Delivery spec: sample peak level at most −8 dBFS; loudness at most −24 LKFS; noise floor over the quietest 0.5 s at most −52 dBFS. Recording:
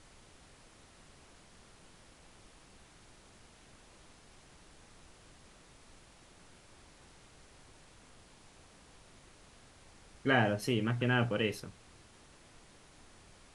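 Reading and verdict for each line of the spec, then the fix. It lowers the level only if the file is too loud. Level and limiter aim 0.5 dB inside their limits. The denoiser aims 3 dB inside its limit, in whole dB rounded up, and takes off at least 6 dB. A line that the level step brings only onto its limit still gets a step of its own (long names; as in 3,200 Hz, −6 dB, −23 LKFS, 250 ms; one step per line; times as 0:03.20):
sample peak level −14.5 dBFS: in spec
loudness −31.5 LKFS: in spec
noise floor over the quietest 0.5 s −59 dBFS: in spec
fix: no processing needed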